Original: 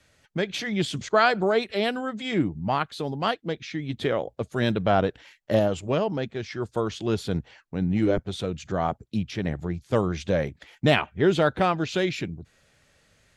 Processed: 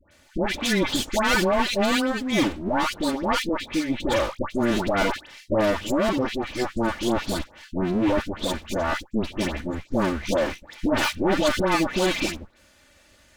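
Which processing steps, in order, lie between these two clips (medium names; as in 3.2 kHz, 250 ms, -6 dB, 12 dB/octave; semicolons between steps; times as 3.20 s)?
comb filter that takes the minimum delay 3.4 ms; hard clipper -25.5 dBFS, distortion -7 dB; phase dispersion highs, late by 113 ms, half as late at 1.3 kHz; trim +7.5 dB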